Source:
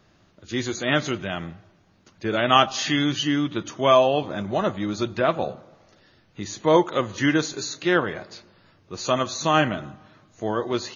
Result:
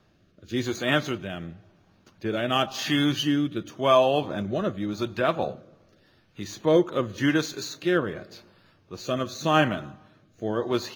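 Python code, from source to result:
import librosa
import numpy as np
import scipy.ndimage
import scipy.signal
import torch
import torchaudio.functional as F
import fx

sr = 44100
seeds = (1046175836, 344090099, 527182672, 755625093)

y = scipy.ndimage.median_filter(x, 5, mode='constant')
y = fx.rotary(y, sr, hz=0.9)
y = fx.notch(y, sr, hz=2000.0, q=16.0)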